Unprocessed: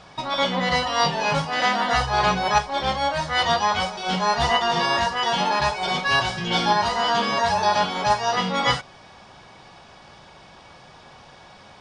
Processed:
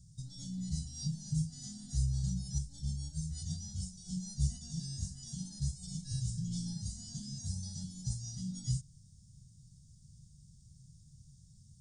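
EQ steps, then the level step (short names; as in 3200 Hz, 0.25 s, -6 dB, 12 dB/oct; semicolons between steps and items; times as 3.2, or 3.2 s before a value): elliptic band-stop 140–7400 Hz, stop band 50 dB; 0.0 dB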